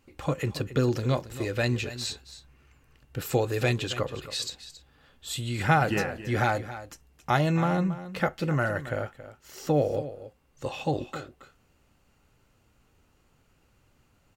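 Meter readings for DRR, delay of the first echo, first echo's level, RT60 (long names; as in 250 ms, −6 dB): no reverb audible, 274 ms, −14.0 dB, no reverb audible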